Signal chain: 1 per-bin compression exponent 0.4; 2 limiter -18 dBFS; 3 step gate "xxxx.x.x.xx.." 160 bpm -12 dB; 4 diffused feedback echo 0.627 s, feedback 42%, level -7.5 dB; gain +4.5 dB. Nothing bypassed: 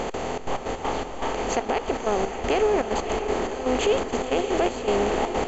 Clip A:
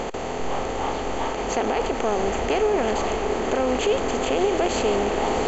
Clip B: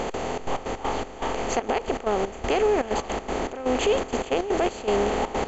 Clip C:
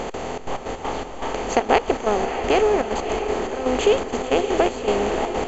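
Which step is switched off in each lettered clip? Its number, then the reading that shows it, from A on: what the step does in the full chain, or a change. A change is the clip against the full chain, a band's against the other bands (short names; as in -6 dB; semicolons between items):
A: 3, momentary loudness spread change -1 LU; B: 4, echo-to-direct -6.5 dB to none; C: 2, crest factor change +7.0 dB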